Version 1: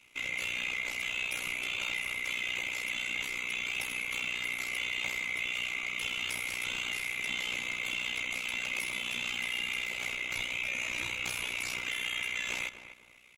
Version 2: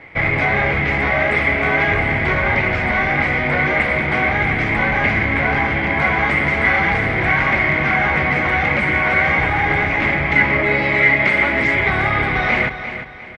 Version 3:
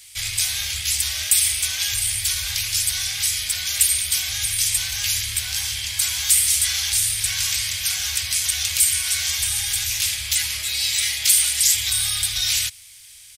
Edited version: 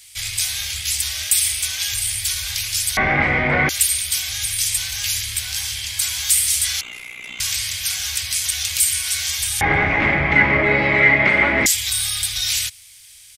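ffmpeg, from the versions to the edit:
-filter_complex "[1:a]asplit=2[s0][s1];[2:a]asplit=4[s2][s3][s4][s5];[s2]atrim=end=2.972[s6];[s0]atrim=start=2.968:end=3.692[s7];[s3]atrim=start=3.688:end=6.812[s8];[0:a]atrim=start=6.808:end=7.402[s9];[s4]atrim=start=7.398:end=9.612[s10];[s1]atrim=start=9.608:end=11.662[s11];[s5]atrim=start=11.658[s12];[s6][s7]acrossfade=d=0.004:c1=hsin:c2=hsin[s13];[s13][s8]acrossfade=d=0.004:c1=hsin:c2=hsin[s14];[s14][s9]acrossfade=d=0.004:c1=hsin:c2=hsin[s15];[s15][s10]acrossfade=d=0.004:c1=hsin:c2=hsin[s16];[s16][s11]acrossfade=d=0.004:c1=hsin:c2=hsin[s17];[s17][s12]acrossfade=d=0.004:c1=hsin:c2=hsin"

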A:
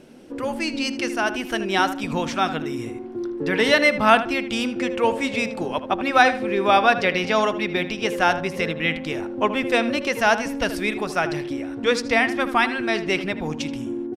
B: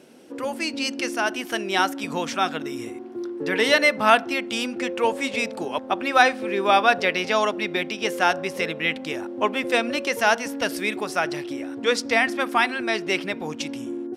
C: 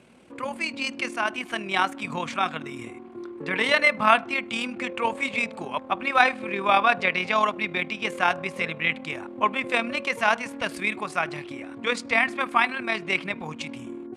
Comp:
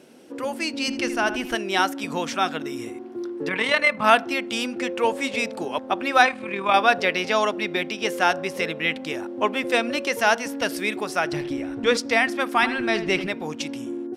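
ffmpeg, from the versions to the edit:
-filter_complex "[0:a]asplit=3[s0][s1][s2];[2:a]asplit=2[s3][s4];[1:a]asplit=6[s5][s6][s7][s8][s9][s10];[s5]atrim=end=0.882[s11];[s0]atrim=start=0.878:end=1.552[s12];[s6]atrim=start=1.548:end=3.492[s13];[s3]atrim=start=3.488:end=4.042[s14];[s7]atrim=start=4.038:end=6.252[s15];[s4]atrim=start=6.248:end=6.742[s16];[s8]atrim=start=6.738:end=11.332[s17];[s1]atrim=start=11.328:end=11.972[s18];[s9]atrim=start=11.968:end=12.632[s19];[s2]atrim=start=12.628:end=13.272[s20];[s10]atrim=start=13.268[s21];[s11][s12]acrossfade=d=0.004:c1=hsin:c2=hsin[s22];[s22][s13]acrossfade=d=0.004:c1=hsin:c2=hsin[s23];[s23][s14]acrossfade=d=0.004:c1=hsin:c2=hsin[s24];[s24][s15]acrossfade=d=0.004:c1=hsin:c2=hsin[s25];[s25][s16]acrossfade=d=0.004:c1=hsin:c2=hsin[s26];[s26][s17]acrossfade=d=0.004:c1=hsin:c2=hsin[s27];[s27][s18]acrossfade=d=0.004:c1=hsin:c2=hsin[s28];[s28][s19]acrossfade=d=0.004:c1=hsin:c2=hsin[s29];[s29][s20]acrossfade=d=0.004:c1=hsin:c2=hsin[s30];[s30][s21]acrossfade=d=0.004:c1=hsin:c2=hsin"

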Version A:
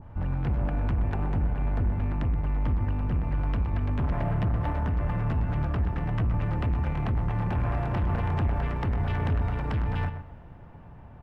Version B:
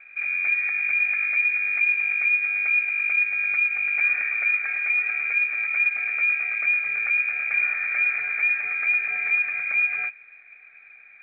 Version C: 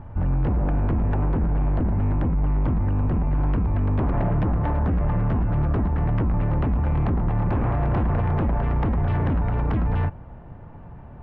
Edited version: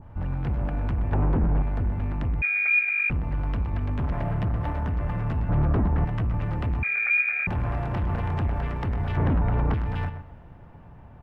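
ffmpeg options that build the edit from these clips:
-filter_complex "[2:a]asplit=3[s0][s1][s2];[1:a]asplit=2[s3][s4];[0:a]asplit=6[s5][s6][s7][s8][s9][s10];[s5]atrim=end=1.122[s11];[s0]atrim=start=1.118:end=1.622[s12];[s6]atrim=start=1.618:end=2.422[s13];[s3]atrim=start=2.418:end=3.102[s14];[s7]atrim=start=3.098:end=5.492[s15];[s1]atrim=start=5.488:end=6.052[s16];[s8]atrim=start=6.048:end=6.832[s17];[s4]atrim=start=6.828:end=7.472[s18];[s9]atrim=start=7.468:end=9.172[s19];[s2]atrim=start=9.168:end=9.742[s20];[s10]atrim=start=9.738[s21];[s11][s12]acrossfade=d=0.004:c1=hsin:c2=hsin[s22];[s22][s13]acrossfade=d=0.004:c1=hsin:c2=hsin[s23];[s23][s14]acrossfade=d=0.004:c1=hsin:c2=hsin[s24];[s24][s15]acrossfade=d=0.004:c1=hsin:c2=hsin[s25];[s25][s16]acrossfade=d=0.004:c1=hsin:c2=hsin[s26];[s26][s17]acrossfade=d=0.004:c1=hsin:c2=hsin[s27];[s27][s18]acrossfade=d=0.004:c1=hsin:c2=hsin[s28];[s28][s19]acrossfade=d=0.004:c1=hsin:c2=hsin[s29];[s29][s20]acrossfade=d=0.004:c1=hsin:c2=hsin[s30];[s30][s21]acrossfade=d=0.004:c1=hsin:c2=hsin"

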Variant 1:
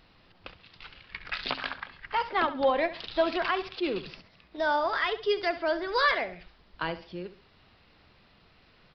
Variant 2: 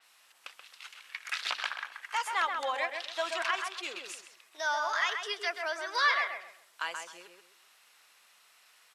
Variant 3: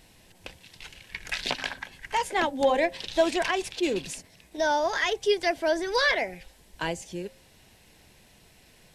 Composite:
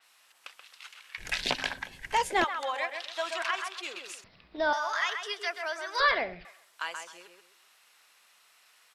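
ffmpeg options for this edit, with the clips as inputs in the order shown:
-filter_complex "[0:a]asplit=2[s0][s1];[1:a]asplit=4[s2][s3][s4][s5];[s2]atrim=end=1.182[s6];[2:a]atrim=start=1.178:end=2.442[s7];[s3]atrim=start=2.438:end=4.242[s8];[s0]atrim=start=4.238:end=4.732[s9];[s4]atrim=start=4.728:end=6.002[s10];[s1]atrim=start=5.998:end=6.452[s11];[s5]atrim=start=6.448[s12];[s6][s7]acrossfade=d=0.004:c1=hsin:c2=hsin[s13];[s13][s8]acrossfade=d=0.004:c1=hsin:c2=hsin[s14];[s14][s9]acrossfade=d=0.004:c1=hsin:c2=hsin[s15];[s15][s10]acrossfade=d=0.004:c1=hsin:c2=hsin[s16];[s16][s11]acrossfade=d=0.004:c1=hsin:c2=hsin[s17];[s17][s12]acrossfade=d=0.004:c1=hsin:c2=hsin"

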